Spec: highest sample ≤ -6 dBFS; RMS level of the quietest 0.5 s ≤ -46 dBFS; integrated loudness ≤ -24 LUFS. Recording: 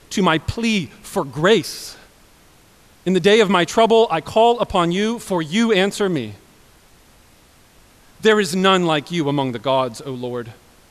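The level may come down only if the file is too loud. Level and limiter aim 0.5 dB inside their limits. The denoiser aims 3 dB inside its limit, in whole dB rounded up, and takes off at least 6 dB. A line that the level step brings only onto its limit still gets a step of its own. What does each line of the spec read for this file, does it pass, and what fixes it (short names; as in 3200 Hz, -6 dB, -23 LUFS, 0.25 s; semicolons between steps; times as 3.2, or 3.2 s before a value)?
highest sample -3.5 dBFS: fail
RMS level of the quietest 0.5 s -51 dBFS: OK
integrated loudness -18.0 LUFS: fail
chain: gain -6.5 dB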